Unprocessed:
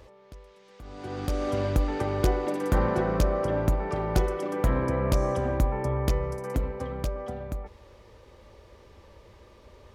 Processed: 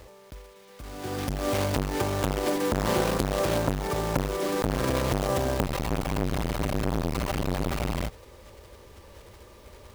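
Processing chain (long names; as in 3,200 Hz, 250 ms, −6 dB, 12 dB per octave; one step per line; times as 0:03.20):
one scale factor per block 3 bits
frozen spectrum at 0:05.66, 2.41 s
saturating transformer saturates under 860 Hz
level +3 dB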